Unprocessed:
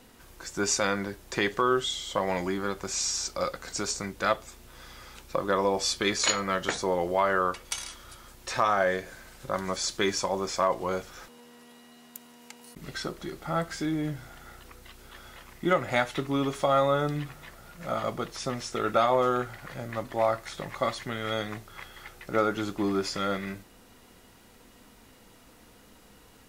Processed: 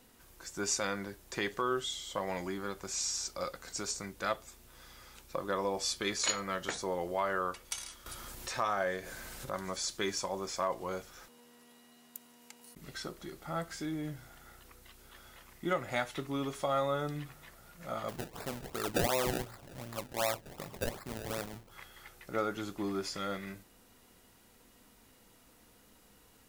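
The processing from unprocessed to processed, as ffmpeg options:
-filter_complex "[0:a]asettb=1/sr,asplit=3[a][b][c];[a]atrim=end=8.064[d];[b]atrim=start=8.06:end=9.82,asetpts=PTS-STARTPTS,afade=t=in:d=0.004:c=qsin,afade=t=out:st=1.756:d=0.004:c=qsin,acompressor=mode=upward:threshold=-27dB:ratio=2.5:attack=3.2:release=140:knee=2.83:detection=peak[e];[c]atrim=start=9.816[f];[d][e]acrossfade=d=0.004:c1=hsin:c2=qsin[g];[g][f]acrossfade=d=0.004:c1=qsin:c2=hsin,asplit=3[h][i][j];[h]afade=t=out:st=18.08:d=0.02[k];[i]acrusher=samples=28:mix=1:aa=0.000001:lfo=1:lforange=28:lforate=2.7,afade=t=in:st=18.08:d=0.02,afade=t=out:st=21.7:d=0.02[l];[j]afade=t=in:st=21.7:d=0.02[m];[k][l][m]amix=inputs=3:normalize=0,highshelf=f=7.6k:g=7,volume=-8dB"

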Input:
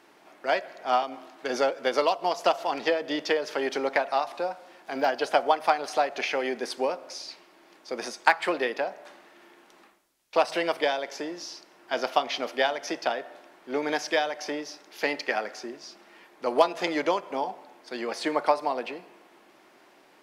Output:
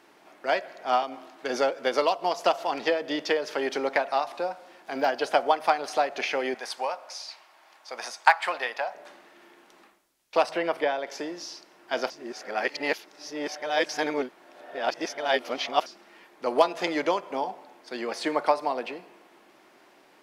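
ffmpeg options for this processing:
-filter_complex "[0:a]asettb=1/sr,asplit=3[a][b][c];[a]atrim=end=6.544[d];[b]atrim=start=6.54:end=8.95,asetpts=PTS-STARTPTS,afade=t=in:d=0.004:c=qsin,afade=t=out:st=2.406:d=0.004:c=qsin,lowshelf=f=520:t=q:w=1.5:g=-13[e];[c]atrim=start=8.946[f];[d][e]acrossfade=d=0.004:c1=hsin:c2=qsin[g];[g][f]acrossfade=d=0.004:c1=qsin:c2=hsin,asettb=1/sr,asplit=3[h][i][j];[h]atrim=end=10.494[k];[i]atrim=start=10.49:end=11.07,asetpts=PTS-STARTPTS,afade=t=in:d=0.004:c=qsin,afade=t=out:st=0.576:d=0.004:c=qsin,acrossover=split=2600[l][m];[m]acompressor=threshold=-48dB:ratio=4:attack=1:release=60[n];[l][n]amix=inputs=2:normalize=0[o];[j]atrim=start=11.066[p];[k][o]acrossfade=d=0.004:c1=hsin:c2=qsin[q];[q][p]acrossfade=d=0.004:c1=qsin:c2=hsin,asplit=3[r][s][t];[r]atrim=end=12.102[u];[s]atrim=start=12.098:end=15.862,asetpts=PTS-STARTPTS,areverse[v];[t]atrim=start=15.858[w];[u][v]acrossfade=d=0.004:c1=hsin:c2=hsin[x];[x][w]acrossfade=d=0.004:c1=hsin:c2=hsin"

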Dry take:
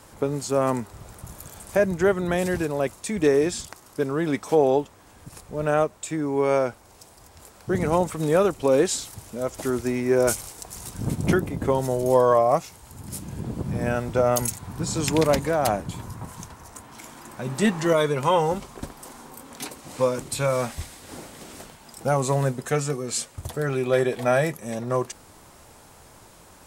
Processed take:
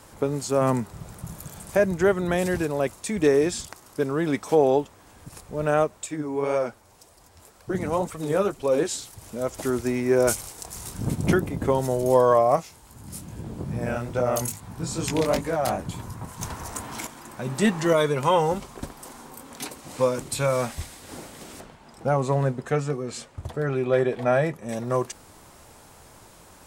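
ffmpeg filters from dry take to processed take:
-filter_complex "[0:a]asettb=1/sr,asplit=3[a][b][c];[a]atrim=end=0.614[d];[b]atrim=start=0.61:end=1.71,asetpts=PTS-STARTPTS,afade=t=in:d=0.004:c=qsin,afade=t=out:st=1.096:d=0.004:c=qsin,equalizer=f=160:t=o:w=0.69:g=9.5[e];[c]atrim=start=1.706[f];[d][e]acrossfade=d=0.004:c1=hsin:c2=qsin[g];[g][f]acrossfade=d=0.004:c1=qsin:c2=hsin,asettb=1/sr,asplit=3[h][i][j];[h]atrim=end=6.064[k];[i]atrim=start=6.06:end=9.22,asetpts=PTS-STARTPTS,afade=t=in:d=0.004:c=qsin,afade=t=out:st=3.156:d=0.004:c=qsin,flanger=delay=1.6:depth=9:regen=35:speed=1.9:shape=sinusoidal[l];[j]atrim=start=9.216[m];[k][l]acrossfade=d=0.004:c1=hsin:c2=qsin[n];[n][m]acrossfade=d=0.004:c1=qsin:c2=hsin,asettb=1/sr,asplit=3[o][p][q];[o]atrim=end=10.554[r];[p]atrim=start=10.55:end=10.99,asetpts=PTS-STARTPTS,afade=t=in:d=0.004:c=qsin,afade=t=out:st=0.436:d=0.004:c=qsin,asplit=2[s][t];[t]adelay=28,volume=-7dB[u];[s][u]amix=inputs=2:normalize=0,atrim=end_sample=19404[v];[q]atrim=start=10.986[w];[r][v]acrossfade=d=0.004:c1=hsin:c2=qsin[x];[x][w]acrossfade=d=0.004:c1=qsin:c2=hsin,asettb=1/sr,asplit=3[y][z][aa];[y]atrim=end=12.564[ab];[z]atrim=start=12.56:end=15.79,asetpts=PTS-STARTPTS,afade=t=in:d=0.004:c=qsin,afade=t=out:st=3.226:d=0.004:c=qsin,flanger=delay=16.5:depth=7.9:speed=2.4[ac];[aa]atrim=start=15.786[ad];[ab][ac]acrossfade=d=0.004:c1=hsin:c2=qsin[ae];[ae][ad]acrossfade=d=0.004:c1=qsin:c2=hsin,asettb=1/sr,asplit=3[af][ag][ah];[af]atrim=end=16.414[ai];[ag]atrim=start=16.41:end=17.07,asetpts=PTS-STARTPTS,afade=t=in:d=0.004:c=qsin,afade=t=out:st=0.656:d=0.004:c=qsin,aeval=exprs='0.106*sin(PI/2*1.78*val(0)/0.106)':c=same[aj];[ah]atrim=start=17.066[ak];[ai][aj]acrossfade=d=0.004:c1=hsin:c2=qsin[al];[al][ak]acrossfade=d=0.004:c1=qsin:c2=hsin,asettb=1/sr,asplit=3[am][an][ao];[am]atrim=end=21.604[ap];[an]atrim=start=21.6:end=24.69,asetpts=PTS-STARTPTS,afade=t=in:d=0.004:c=qsin,afade=t=out:st=3.086:d=0.004:c=qsin,aemphasis=mode=reproduction:type=75kf[aq];[ao]atrim=start=24.686[ar];[ap][aq]acrossfade=d=0.004:c1=hsin:c2=qsin[as];[as][ar]acrossfade=d=0.004:c1=qsin:c2=hsin"

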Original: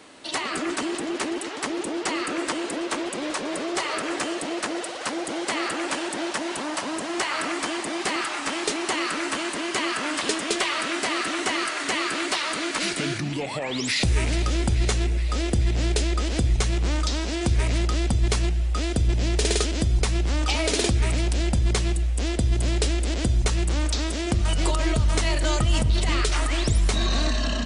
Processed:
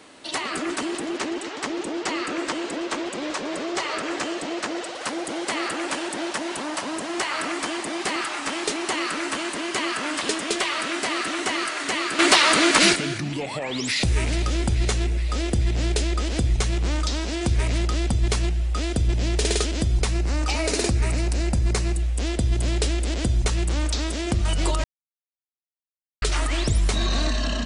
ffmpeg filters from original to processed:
-filter_complex "[0:a]asettb=1/sr,asplit=3[a][b][c];[a]atrim=end=1.174[d];[b]atrim=start=1.17:end=4.95,asetpts=PTS-STARTPTS,afade=t=in:d=0.004:c=qsin,afade=t=out:st=3.776:d=0.004:c=qsin,lowpass=f=8.1k:w=0.5412,lowpass=f=8.1k:w=1.3066[e];[c]atrim=start=4.946[f];[d][e]acrossfade=d=0.004:c1=hsin:c2=qsin[g];[g][f]acrossfade=d=0.004:c1=qsin:c2=hsin,asettb=1/sr,asplit=3[h][i][j];[h]atrim=end=20.134[k];[i]atrim=start=20.13:end=21.97,asetpts=PTS-STARTPTS,afade=t=in:d=0.004:c=qsin,afade=t=out:st=1.836:d=0.004:c=qsin,equalizer=f=3.3k:t=o:w=0.29:g=-9[l];[j]atrim=start=21.966[m];[k][l]acrossfade=d=0.004:c1=hsin:c2=qsin[n];[n][m]acrossfade=d=0.004:c1=qsin:c2=hsin,asplit=5[o][p][q][r][s];[o]atrim=end=12.192[t];[p]atrim=start=12.188:end=12.962,asetpts=PTS-STARTPTS,volume=10dB[u];[q]atrim=start=12.958:end=24.84,asetpts=PTS-STARTPTS,afade=t=out:st=11.878:d=0.004:c=hsin[v];[r]atrim=start=24.84:end=26.22,asetpts=PTS-STARTPTS,volume=0[w];[s]atrim=start=26.22,asetpts=PTS-STARTPTS,afade=t=in:d=0.004:c=hsin[x];[t][u]acrossfade=d=0.004:c1=hsin:c2=hsin[y];[v][w][x]concat=n=3:v=0:a=1[z];[y][z]acrossfade=d=0.004:c1=hsin:c2=hsin"

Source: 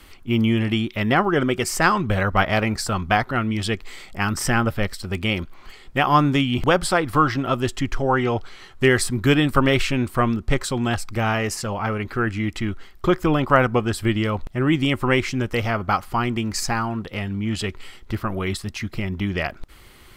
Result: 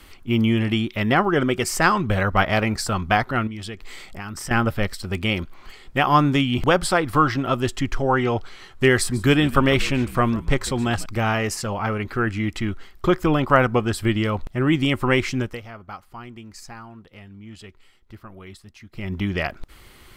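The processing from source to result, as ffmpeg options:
-filter_complex "[0:a]asettb=1/sr,asplit=3[a][b][c];[a]atrim=end=3.474[d];[b]atrim=start=3.47:end=4.51,asetpts=PTS-STARTPTS,afade=t=in:d=0.004:c=qsin,afade=t=out:st=1.036:d=0.004:c=qsin,acompressor=threshold=-31dB:ratio=4:attack=3.2:release=140:knee=1:detection=peak[e];[c]atrim=start=4.506[f];[d][e]acrossfade=d=0.004:c1=hsin:c2=qsin[g];[g][f]acrossfade=d=0.004:c1=qsin:c2=hsin,asettb=1/sr,asplit=3[h][i][j];[h]atrim=end=8.964[k];[i]atrim=start=8.96:end=11.06,asetpts=PTS-STARTPTS,afade=t=in:d=0.004:c=qsin,afade=t=out:st=2.096:d=0.004:c=qsin,asplit=4[l][m][n][o];[m]adelay=146,afreqshift=-66,volume=-18dB[p];[n]adelay=292,afreqshift=-132,volume=-26.9dB[q];[o]adelay=438,afreqshift=-198,volume=-35.7dB[r];[l][p][q][r]amix=inputs=4:normalize=0,atrim=end_sample=92610[s];[j]atrim=start=11.056[t];[k][s]acrossfade=d=0.004:c1=hsin:c2=qsin[u];[u][t]acrossfade=d=0.004:c1=qsin:c2=hsin,asplit=3[v][w][x];[v]atrim=end=15.6,asetpts=PTS-STARTPTS,afade=t=out:st=15.39:d=0.21:silence=0.158489[y];[w]atrim=start=15.6:end=18.92,asetpts=PTS-STARTPTS,volume=-16dB[z];[x]atrim=start=18.92,asetpts=PTS-STARTPTS,afade=t=in:d=0.21:silence=0.158489[aa];[y][z][aa]concat=n=3:v=0:a=1"

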